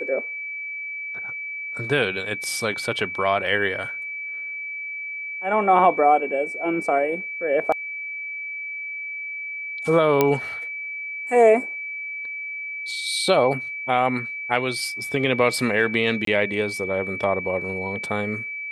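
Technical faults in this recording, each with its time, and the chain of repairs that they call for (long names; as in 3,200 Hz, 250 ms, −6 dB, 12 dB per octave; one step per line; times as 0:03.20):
whistle 2,300 Hz −29 dBFS
0:10.21: click −4 dBFS
0:16.25–0:16.27: drop-out 23 ms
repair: click removal
notch filter 2,300 Hz, Q 30
repair the gap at 0:16.25, 23 ms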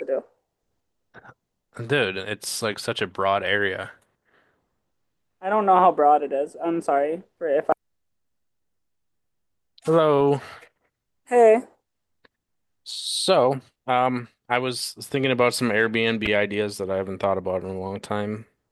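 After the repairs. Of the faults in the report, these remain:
none of them is left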